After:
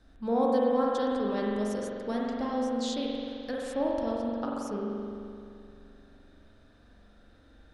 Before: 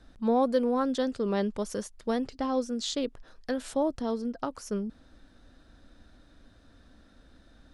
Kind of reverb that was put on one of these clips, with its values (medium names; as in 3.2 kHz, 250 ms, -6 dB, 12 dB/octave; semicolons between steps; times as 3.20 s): spring tank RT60 2.5 s, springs 43 ms, chirp 65 ms, DRR -3.5 dB; trim -5 dB